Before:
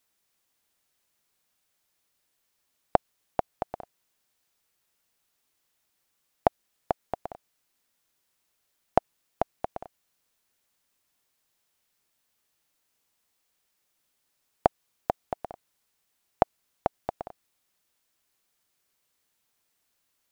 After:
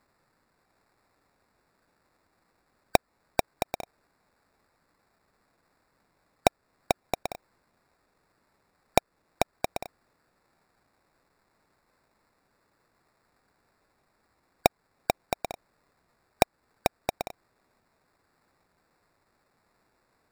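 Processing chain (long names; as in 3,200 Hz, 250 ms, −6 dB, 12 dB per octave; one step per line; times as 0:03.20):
gate on every frequency bin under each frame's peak −25 dB strong
in parallel at 0 dB: downward compressor, threshold −29 dBFS, peak gain reduction 14.5 dB
on the sum: sample-rate reduction 3,100 Hz, jitter 0%
level −1.5 dB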